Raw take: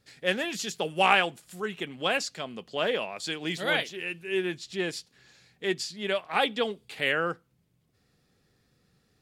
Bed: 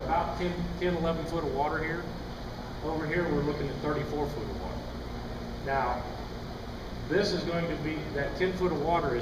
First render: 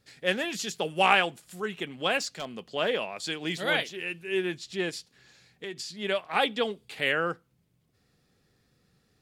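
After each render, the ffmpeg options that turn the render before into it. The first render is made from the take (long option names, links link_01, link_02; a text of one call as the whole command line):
ffmpeg -i in.wav -filter_complex "[0:a]asplit=3[link_01][link_02][link_03];[link_01]afade=type=out:start_time=2.18:duration=0.02[link_04];[link_02]aeval=exprs='0.0562*(abs(mod(val(0)/0.0562+3,4)-2)-1)':channel_layout=same,afade=type=in:start_time=2.18:duration=0.02,afade=type=out:start_time=2.69:duration=0.02[link_05];[link_03]afade=type=in:start_time=2.69:duration=0.02[link_06];[link_04][link_05][link_06]amix=inputs=3:normalize=0,asplit=3[link_07][link_08][link_09];[link_07]afade=type=out:start_time=4.89:duration=0.02[link_10];[link_08]acompressor=threshold=-33dB:ratio=6:attack=3.2:release=140:knee=1:detection=peak,afade=type=in:start_time=4.89:duration=0.02,afade=type=out:start_time=5.91:duration=0.02[link_11];[link_09]afade=type=in:start_time=5.91:duration=0.02[link_12];[link_10][link_11][link_12]amix=inputs=3:normalize=0" out.wav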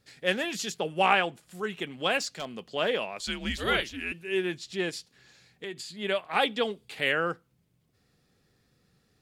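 ffmpeg -i in.wav -filter_complex "[0:a]asettb=1/sr,asplit=3[link_01][link_02][link_03];[link_01]atrim=end=0.744[link_04];[link_02]atrim=start=0.74:end=1.55,asetpts=PTS-STARTPTS,afade=type=in:duration=0.004:curve=qsin,afade=type=out:start_time=0.806:duration=0.004:curve=qsin,highshelf=frequency=3200:gain=-7.5[link_05];[link_03]atrim=start=1.546[link_06];[link_04][link_05]acrossfade=duration=0.004:curve1=hsin:curve2=qsin[link_07];[link_07][link_06]acrossfade=duration=0.004:curve1=qsin:curve2=hsin,asettb=1/sr,asplit=3[link_08][link_09][link_10];[link_08]atrim=end=3.194[link_11];[link_09]atrim=start=3.19:end=4.12,asetpts=PTS-STARTPTS,afade=type=in:duration=0.004:curve=qsin,afade=type=out:start_time=0.926:duration=0.004:curve=qsin,afreqshift=-110[link_12];[link_10]atrim=start=4.116[link_13];[link_11][link_12]acrossfade=duration=0.004:curve1=hsin:curve2=qsin[link_14];[link_14][link_13]acrossfade=duration=0.004:curve1=qsin:curve2=hsin,asettb=1/sr,asplit=3[link_15][link_16][link_17];[link_15]atrim=end=5.644[link_18];[link_16]atrim=start=5.64:end=6.32,asetpts=PTS-STARTPTS,afade=type=in:duration=0.004:curve=qsin,afade=type=out:start_time=0.676:duration=0.004:curve=qsin,equalizer=frequency=5600:width=5.6:gain=-12.5[link_19];[link_17]atrim=start=6.316[link_20];[link_18][link_19]acrossfade=duration=0.004:curve1=hsin:curve2=qsin[link_21];[link_21][link_20]acrossfade=duration=0.004:curve1=qsin:curve2=hsin" out.wav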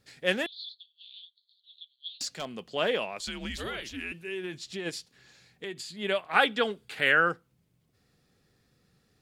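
ffmpeg -i in.wav -filter_complex "[0:a]asettb=1/sr,asplit=3[link_01][link_02][link_03];[link_01]atrim=end=0.464[link_04];[link_02]atrim=start=0.46:end=2.21,asetpts=PTS-STARTPTS,afade=type=in:duration=0.004:curve=qsin,afade=type=out:start_time=1.746:duration=0.004:curve=qsin,asuperpass=centerf=3900:order=8:qfactor=3.7[link_05];[link_03]atrim=start=2.206[link_06];[link_04][link_05]acrossfade=duration=0.004:curve1=hsin:curve2=qsin[link_07];[link_07][link_06]acrossfade=duration=0.004:curve1=qsin:curve2=hsin,asplit=3[link_08][link_09][link_10];[link_08]afade=type=out:start_time=3.2:duration=0.02[link_11];[link_09]acompressor=threshold=-31dB:ratio=10:attack=3.2:release=140:knee=1:detection=peak,afade=type=in:start_time=3.2:duration=0.02,afade=type=out:start_time=4.85:duration=0.02[link_12];[link_10]afade=type=in:start_time=4.85:duration=0.02[link_13];[link_11][link_12][link_13]amix=inputs=3:normalize=0,asettb=1/sr,asplit=3[link_14][link_15][link_16];[link_14]atrim=end=6.344[link_17];[link_15]atrim=start=6.34:end=7.29,asetpts=PTS-STARTPTS,afade=type=in:duration=0.004:curve=qsin,afade=type=out:start_time=0.946:duration=0.004:curve=qsin,equalizer=frequency=1500:width_type=o:width=0.53:gain=9[link_18];[link_16]atrim=start=7.286[link_19];[link_17][link_18]acrossfade=duration=0.004:curve1=hsin:curve2=qsin[link_20];[link_20][link_19]acrossfade=duration=0.004:curve1=qsin:curve2=hsin" out.wav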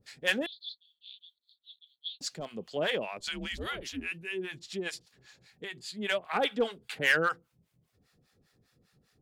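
ffmpeg -i in.wav -filter_complex "[0:a]acrossover=split=680[link_01][link_02];[link_01]aeval=exprs='val(0)*(1-1/2+1/2*cos(2*PI*5*n/s))':channel_layout=same[link_03];[link_02]aeval=exprs='val(0)*(1-1/2-1/2*cos(2*PI*5*n/s))':channel_layout=same[link_04];[link_03][link_04]amix=inputs=2:normalize=0,asplit=2[link_05][link_06];[link_06]aeval=exprs='0.0631*(abs(mod(val(0)/0.0631+3,4)-2)-1)':channel_layout=same,volume=-6dB[link_07];[link_05][link_07]amix=inputs=2:normalize=0" out.wav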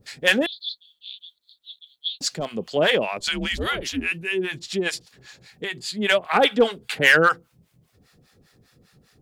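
ffmpeg -i in.wav -af "volume=11dB,alimiter=limit=-3dB:level=0:latency=1" out.wav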